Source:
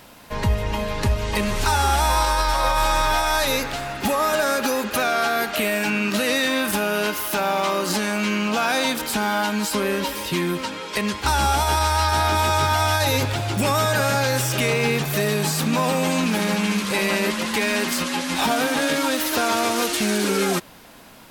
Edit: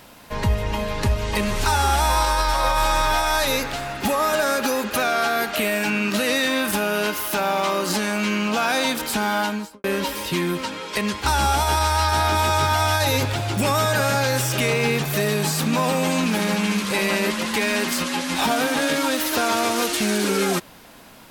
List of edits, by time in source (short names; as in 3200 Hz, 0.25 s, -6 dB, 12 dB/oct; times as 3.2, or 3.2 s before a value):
9.41–9.84 studio fade out